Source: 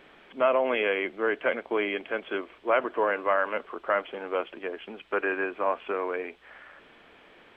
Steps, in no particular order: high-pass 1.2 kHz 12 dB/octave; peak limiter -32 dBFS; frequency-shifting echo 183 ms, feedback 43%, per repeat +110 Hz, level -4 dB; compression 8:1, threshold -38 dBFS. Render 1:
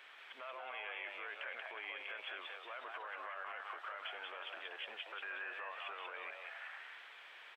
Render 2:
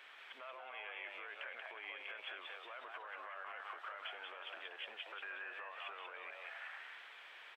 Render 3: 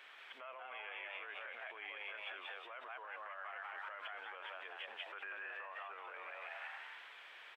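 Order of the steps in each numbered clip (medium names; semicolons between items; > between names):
peak limiter > frequency-shifting echo > high-pass > compression; peak limiter > frequency-shifting echo > compression > high-pass; frequency-shifting echo > peak limiter > compression > high-pass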